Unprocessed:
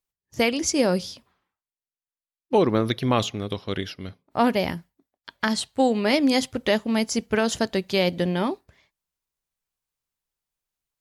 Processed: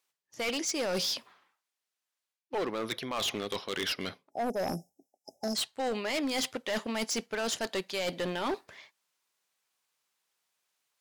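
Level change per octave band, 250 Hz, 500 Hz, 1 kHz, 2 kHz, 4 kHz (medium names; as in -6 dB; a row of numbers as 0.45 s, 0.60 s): -13.0 dB, -10.0 dB, -9.0 dB, -7.0 dB, -4.0 dB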